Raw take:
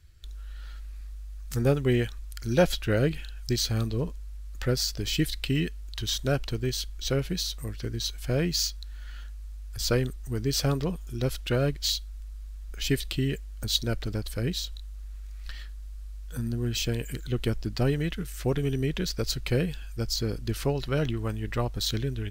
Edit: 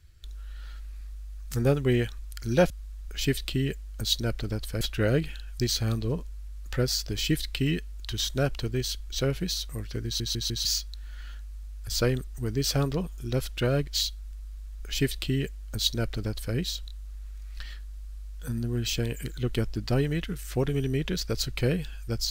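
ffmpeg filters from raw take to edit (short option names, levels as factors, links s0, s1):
-filter_complex "[0:a]asplit=7[s0][s1][s2][s3][s4][s5][s6];[s0]atrim=end=2.702[s7];[s1]atrim=start=12.328:end=14.442[s8];[s2]atrim=start=2.698:end=8.092[s9];[s3]atrim=start=7.938:end=8.092[s10];[s4]atrim=start=7.938:end=8.092[s11];[s5]atrim=start=7.938:end=8.092[s12];[s6]atrim=start=8.538[s13];[s7][s8]acrossfade=d=0.004:c1=hsin:c2=hsin[s14];[s14][s9]acrossfade=d=0.004:c1=hsin:c2=hsin[s15];[s15][s10]acrossfade=d=0.004:c1=hsin:c2=hsin[s16];[s16][s11]acrossfade=d=0.004:c1=hsin:c2=hsin[s17];[s17][s12]acrossfade=d=0.004:c1=hsin:c2=hsin[s18];[s18][s13]acrossfade=d=0.004:c1=hsin:c2=hsin"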